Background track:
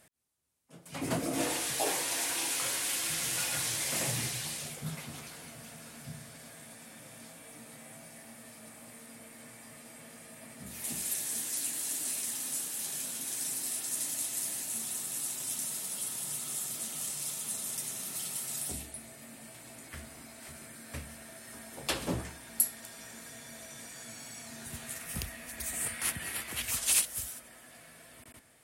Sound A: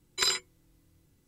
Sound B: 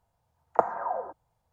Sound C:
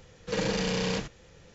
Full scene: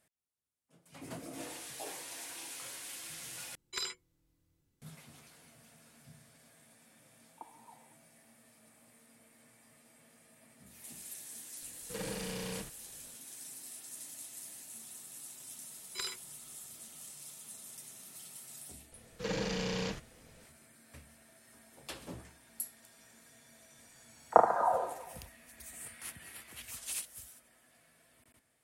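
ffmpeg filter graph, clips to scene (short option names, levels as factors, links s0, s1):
-filter_complex "[1:a]asplit=2[s0][s1];[2:a]asplit=2[s2][s3];[3:a]asplit=2[s4][s5];[0:a]volume=0.237[s6];[s2]asplit=3[s7][s8][s9];[s7]bandpass=f=300:t=q:w=8,volume=1[s10];[s8]bandpass=f=870:t=q:w=8,volume=0.501[s11];[s9]bandpass=f=2240:t=q:w=8,volume=0.355[s12];[s10][s11][s12]amix=inputs=3:normalize=0[s13];[s3]aecho=1:1:30|75|142.5|243.8|395.6:0.631|0.398|0.251|0.158|0.1[s14];[s6]asplit=2[s15][s16];[s15]atrim=end=3.554[s17];[s0]atrim=end=1.27,asetpts=PTS-STARTPTS,volume=0.282[s18];[s16]atrim=start=4.816[s19];[s13]atrim=end=1.52,asetpts=PTS-STARTPTS,volume=0.188,afade=t=in:d=0.004:c=hsin,afade=t=out:st=1.516:d=0.004:c=hsin,adelay=300762S[s20];[s4]atrim=end=1.54,asetpts=PTS-STARTPTS,volume=0.266,afade=t=in:d=0.004:c=hsin,afade=t=out:st=1.536:d=0.004:c=hsin,adelay=512442S[s21];[s1]atrim=end=1.27,asetpts=PTS-STARTPTS,volume=0.237,afade=t=in:d=0.004:c=hsin,afade=t=out:st=1.266:d=0.004:c=hsin,adelay=15770[s22];[s5]atrim=end=1.54,asetpts=PTS-STARTPTS,volume=0.473,afade=t=in:d=0.004:c=hsin,afade=t=out:st=1.536:d=0.004:c=hsin,adelay=834372S[s23];[s14]atrim=end=1.52,asetpts=PTS-STARTPTS,volume=0.944,afade=t=in:d=0.004:c=hsin,afade=t=out:st=1.516:d=0.004:c=hsin,adelay=23770[s24];[s17][s18]acrossfade=d=0.004:c1=hsin:c2=hsin[s25];[s25][s19]acrossfade=d=0.004:c1=hsin:c2=hsin[s26];[s26][s20][s21][s22][s23][s24]amix=inputs=6:normalize=0"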